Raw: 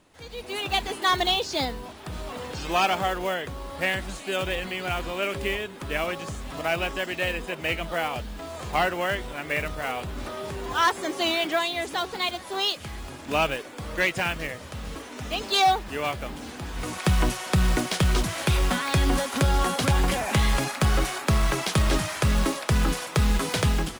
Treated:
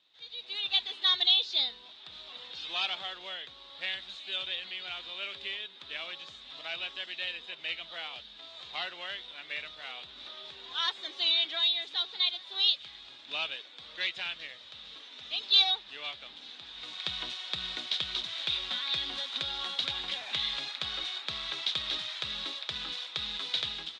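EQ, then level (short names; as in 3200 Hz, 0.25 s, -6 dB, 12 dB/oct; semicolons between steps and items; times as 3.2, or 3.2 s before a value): ladder low-pass 3900 Hz, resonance 80%; tilt +4 dB/oct; -5.0 dB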